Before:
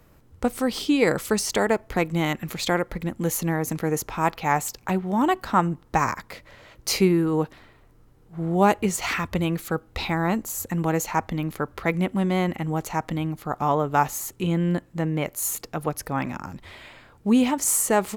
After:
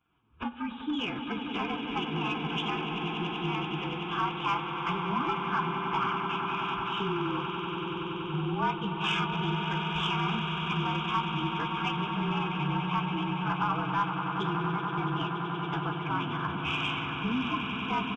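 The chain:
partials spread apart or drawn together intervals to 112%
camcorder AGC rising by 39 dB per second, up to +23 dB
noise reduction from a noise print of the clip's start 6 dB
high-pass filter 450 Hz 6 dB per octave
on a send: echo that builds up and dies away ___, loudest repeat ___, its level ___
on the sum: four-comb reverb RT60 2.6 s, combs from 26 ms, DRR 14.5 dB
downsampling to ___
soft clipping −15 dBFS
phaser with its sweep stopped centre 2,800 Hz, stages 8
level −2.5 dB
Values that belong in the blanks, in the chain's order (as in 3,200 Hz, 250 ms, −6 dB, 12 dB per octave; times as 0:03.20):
95 ms, 8, −11 dB, 8,000 Hz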